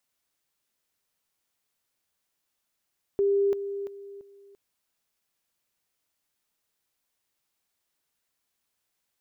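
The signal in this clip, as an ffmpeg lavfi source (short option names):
-f lavfi -i "aevalsrc='pow(10,(-20-10*floor(t/0.34))/20)*sin(2*PI*399*t)':d=1.36:s=44100"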